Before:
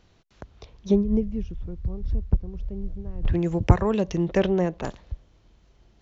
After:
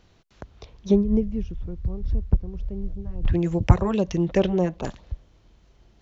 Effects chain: 2.93–5.03 LFO notch sine 4.9 Hz 370–2000 Hz; gain +1.5 dB

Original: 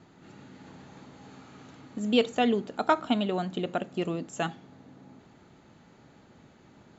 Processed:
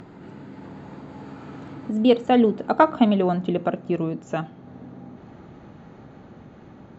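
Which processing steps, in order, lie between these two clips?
Doppler pass-by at 2.89, 15 m/s, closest 15 m; LPF 1100 Hz 6 dB/oct; in parallel at -3 dB: upward compressor, threshold -31 dBFS; on the sum: gain +5 dB

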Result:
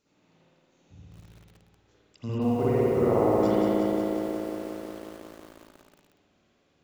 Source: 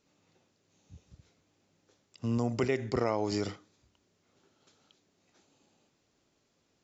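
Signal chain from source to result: 2.38–3.43 LPF 1000 Hz 12 dB/oct; spring tank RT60 2.2 s, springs 54 ms, chirp 30 ms, DRR -8.5 dB; lo-fi delay 0.181 s, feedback 80%, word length 8-bit, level -4.5 dB; gain -2 dB

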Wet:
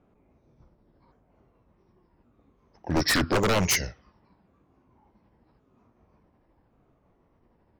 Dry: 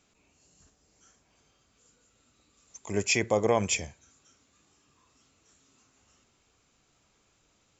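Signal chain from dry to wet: repeated pitch sweeps -6.5 st, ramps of 1.118 s; low-pass opened by the level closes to 820 Hz, open at -25 dBFS; wavefolder -25.5 dBFS; gain +8.5 dB

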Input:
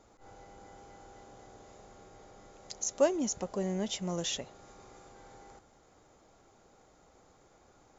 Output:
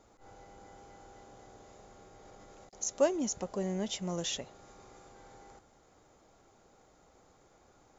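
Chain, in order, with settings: 2.25–2.73 negative-ratio compressor -55 dBFS, ratio -0.5; gain -1 dB

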